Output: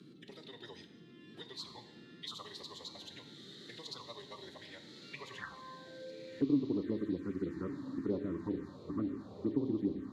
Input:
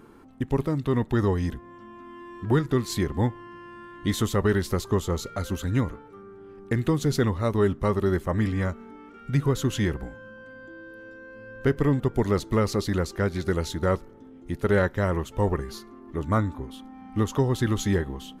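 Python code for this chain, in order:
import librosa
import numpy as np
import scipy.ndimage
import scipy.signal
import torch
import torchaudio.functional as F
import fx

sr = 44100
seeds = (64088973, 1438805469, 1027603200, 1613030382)

p1 = fx.filter_sweep_bandpass(x, sr, from_hz=4000.0, to_hz=290.0, start_s=8.94, end_s=11.65, q=4.8)
p2 = fx.stretch_vocoder(p1, sr, factor=0.55)
p3 = fx.peak_eq(p2, sr, hz=1100.0, db=10.0, octaves=0.49)
p4 = p3 + fx.echo_diffused(p3, sr, ms=1247, feedback_pct=57, wet_db=-11, dry=0)
p5 = fx.rev_plate(p4, sr, seeds[0], rt60_s=0.98, hf_ratio=1.0, predelay_ms=0, drr_db=7.5)
p6 = fx.env_phaser(p5, sr, low_hz=160.0, high_hz=1700.0, full_db=-28.5)
p7 = fx.dmg_noise_band(p6, sr, seeds[1], low_hz=130.0, high_hz=360.0, level_db=-67.0)
p8 = fx.band_squash(p7, sr, depth_pct=40)
y = p8 * librosa.db_to_amplitude(1.0)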